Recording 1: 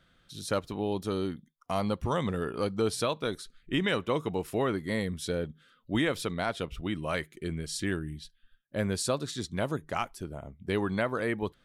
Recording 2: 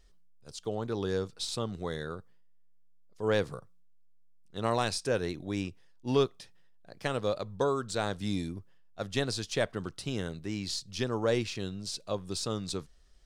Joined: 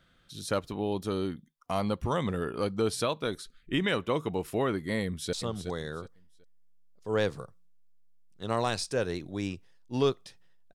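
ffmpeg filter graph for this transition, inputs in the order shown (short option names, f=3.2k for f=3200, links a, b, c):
-filter_complex "[0:a]apad=whole_dur=10.74,atrim=end=10.74,atrim=end=5.332[a];[1:a]atrim=start=1.468:end=6.88[b];[a][b]acrossfade=d=0.004:c1=hsin:c2=hsin,asplit=2[c][d];[d]afade=t=in:st=5.04:d=0.01,afade=t=out:st=5.33:d=0.01,aecho=0:1:370|740|1110:0.375837|0.0939594|0.0234898[e];[c][e]amix=inputs=2:normalize=0"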